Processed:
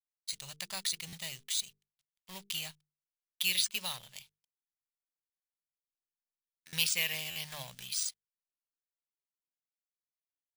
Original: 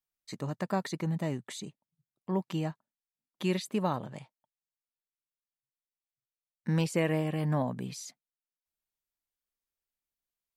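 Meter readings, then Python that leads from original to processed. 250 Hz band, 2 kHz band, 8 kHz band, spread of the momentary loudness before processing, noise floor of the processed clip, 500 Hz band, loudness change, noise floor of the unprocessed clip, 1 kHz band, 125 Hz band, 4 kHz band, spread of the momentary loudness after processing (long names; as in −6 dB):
−22.0 dB, +3.5 dB, +10.5 dB, 16 LU, below −85 dBFS, −19.5 dB, −1.0 dB, below −85 dBFS, −13.5 dB, −19.5 dB, +11.5 dB, 15 LU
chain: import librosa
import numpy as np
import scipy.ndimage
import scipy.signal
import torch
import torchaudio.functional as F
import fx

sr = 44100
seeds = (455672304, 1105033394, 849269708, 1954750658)

y = fx.law_mismatch(x, sr, coded='A')
y = fx.high_shelf_res(y, sr, hz=2100.0, db=14.0, q=1.5)
y = np.repeat(y[::3], 3)[:len(y)]
y = fx.tone_stack(y, sr, knobs='10-0-10')
y = fx.hum_notches(y, sr, base_hz=50, count=9)
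y = fx.buffer_glitch(y, sr, at_s=(1.07, 6.67, 7.3), block=512, repeats=4)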